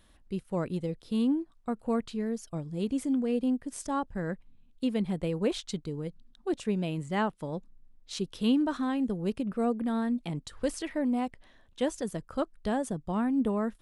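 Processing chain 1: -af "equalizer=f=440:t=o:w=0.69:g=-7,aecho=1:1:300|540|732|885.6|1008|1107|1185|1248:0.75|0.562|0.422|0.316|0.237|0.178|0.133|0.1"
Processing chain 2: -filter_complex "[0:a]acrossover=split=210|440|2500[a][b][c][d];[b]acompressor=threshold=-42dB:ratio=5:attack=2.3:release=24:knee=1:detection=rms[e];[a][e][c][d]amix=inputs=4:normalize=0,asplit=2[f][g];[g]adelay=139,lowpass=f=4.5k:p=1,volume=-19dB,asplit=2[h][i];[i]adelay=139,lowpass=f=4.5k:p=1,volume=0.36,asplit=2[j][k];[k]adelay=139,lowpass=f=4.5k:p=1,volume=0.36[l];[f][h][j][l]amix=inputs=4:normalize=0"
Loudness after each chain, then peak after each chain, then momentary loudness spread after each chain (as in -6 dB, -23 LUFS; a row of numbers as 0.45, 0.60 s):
-30.0, -34.5 LUFS; -15.0, -17.0 dBFS; 6, 8 LU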